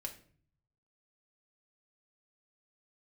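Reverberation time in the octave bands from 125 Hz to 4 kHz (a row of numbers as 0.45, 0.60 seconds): 1.1, 0.75, 0.55, 0.45, 0.45, 0.35 seconds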